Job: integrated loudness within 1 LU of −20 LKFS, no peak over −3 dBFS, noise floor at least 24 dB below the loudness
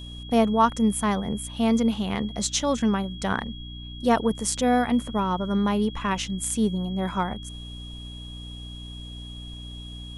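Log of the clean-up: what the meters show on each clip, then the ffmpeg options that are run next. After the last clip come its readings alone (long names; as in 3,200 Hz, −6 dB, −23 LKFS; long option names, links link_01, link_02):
mains hum 60 Hz; hum harmonics up to 300 Hz; level of the hum −37 dBFS; interfering tone 3,300 Hz; level of the tone −42 dBFS; integrated loudness −24.5 LKFS; sample peak −7.0 dBFS; target loudness −20.0 LKFS
→ -af "bandreject=frequency=60:width_type=h:width=4,bandreject=frequency=120:width_type=h:width=4,bandreject=frequency=180:width_type=h:width=4,bandreject=frequency=240:width_type=h:width=4,bandreject=frequency=300:width_type=h:width=4"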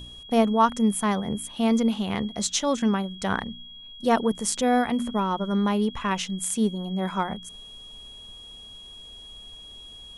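mains hum none found; interfering tone 3,300 Hz; level of the tone −42 dBFS
→ -af "bandreject=frequency=3300:width=30"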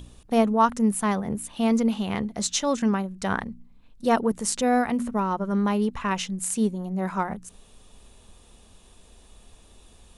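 interfering tone none found; integrated loudness −25.0 LKFS; sample peak −7.0 dBFS; target loudness −20.0 LKFS
→ -af "volume=5dB,alimiter=limit=-3dB:level=0:latency=1"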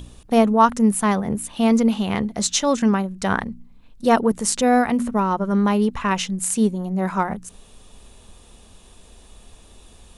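integrated loudness −20.0 LKFS; sample peak −3.0 dBFS; background noise floor −49 dBFS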